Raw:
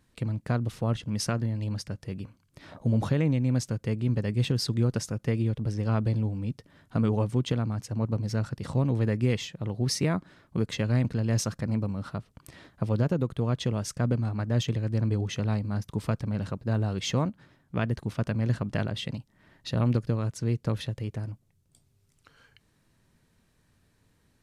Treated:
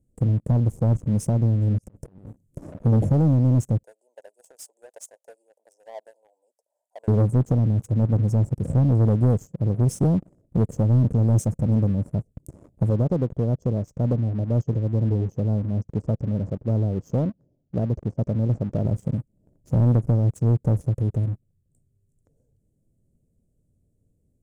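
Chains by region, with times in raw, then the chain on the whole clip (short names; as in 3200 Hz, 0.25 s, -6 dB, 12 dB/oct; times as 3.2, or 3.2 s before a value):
1.78–2.76 bell 77 Hz -5 dB 1.6 oct + negative-ratio compressor -49 dBFS
3.83–7.08 steep high-pass 680 Hz + bell 950 Hz +9.5 dB 0.35 oct
12.9–18.85 LPF 5500 Hz 24 dB/oct + low shelf 290 Hz -6.5 dB
whole clip: elliptic band-stop 590–7300 Hz; tilt -1.5 dB/oct; sample leveller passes 2; gain -1 dB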